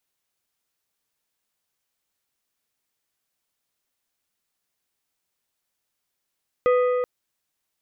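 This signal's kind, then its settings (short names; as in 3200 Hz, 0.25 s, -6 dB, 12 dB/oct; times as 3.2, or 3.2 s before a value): metal hit plate, length 0.38 s, lowest mode 497 Hz, decay 3.33 s, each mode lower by 8.5 dB, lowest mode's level -15 dB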